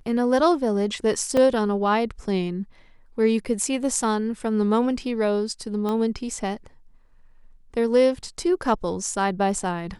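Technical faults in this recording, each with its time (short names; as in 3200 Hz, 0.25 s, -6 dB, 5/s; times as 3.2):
1.37 gap 3.6 ms
5.89 pop -16 dBFS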